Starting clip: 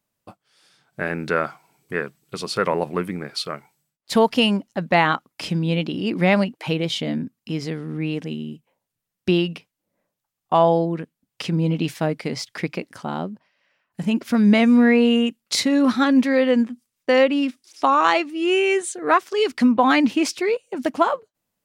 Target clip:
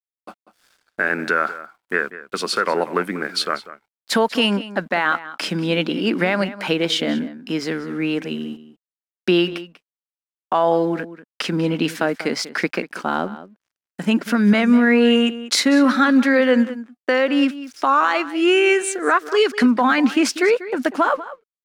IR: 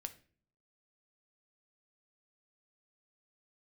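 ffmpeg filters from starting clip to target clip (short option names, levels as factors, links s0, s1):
-filter_complex "[0:a]highpass=f=210:w=0.5412,highpass=f=210:w=1.3066,equalizer=f=1500:w=2.5:g=9.5,alimiter=limit=0.251:level=0:latency=1:release=174,aeval=exprs='sgn(val(0))*max(abs(val(0))-0.00178,0)':c=same,asplit=2[s0][s1];[s1]adelay=192.4,volume=0.178,highshelf=f=4000:g=-4.33[s2];[s0][s2]amix=inputs=2:normalize=0,volume=1.78"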